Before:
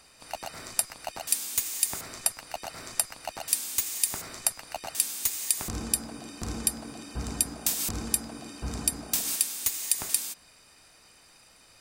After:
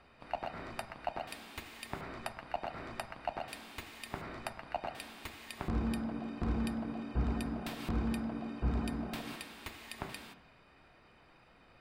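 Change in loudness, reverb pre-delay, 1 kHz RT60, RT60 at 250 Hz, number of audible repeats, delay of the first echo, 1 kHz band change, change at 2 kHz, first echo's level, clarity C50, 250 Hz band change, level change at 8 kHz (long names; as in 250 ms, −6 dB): −11.0 dB, 3 ms, 1.2 s, 1.0 s, no echo audible, no echo audible, −0.5 dB, −3.5 dB, no echo audible, 14.0 dB, +3.0 dB, −29.0 dB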